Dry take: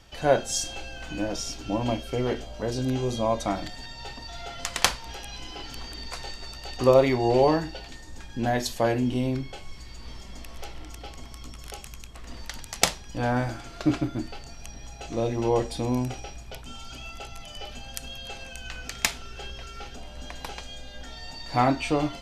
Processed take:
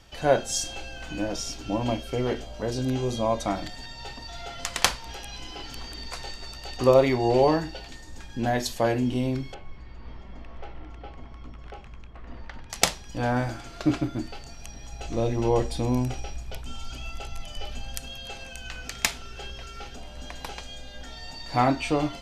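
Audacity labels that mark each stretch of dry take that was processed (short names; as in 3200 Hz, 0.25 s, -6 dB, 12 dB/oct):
9.540000	12.700000	LPF 1900 Hz
14.920000	18.000000	low shelf 77 Hz +9.5 dB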